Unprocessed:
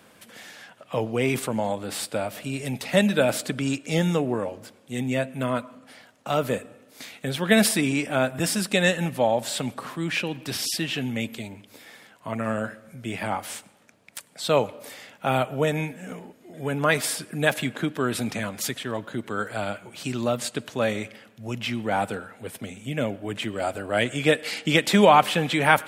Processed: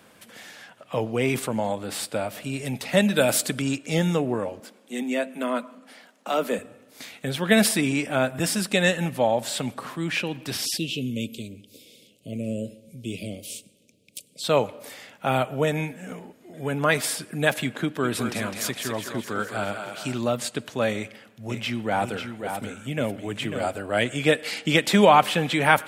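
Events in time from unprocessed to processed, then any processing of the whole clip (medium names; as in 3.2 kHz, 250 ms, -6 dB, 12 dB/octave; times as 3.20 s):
3.16–3.62 s: treble shelf 4.8 kHz +10.5 dB
4.60–6.59 s: steep high-pass 170 Hz 96 dB/octave
10.77–14.44 s: inverse Chebyshev band-stop 790–1800 Hz
17.82–20.18 s: thinning echo 207 ms, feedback 57%, level -5.5 dB
20.95–23.77 s: delay 545 ms -7 dB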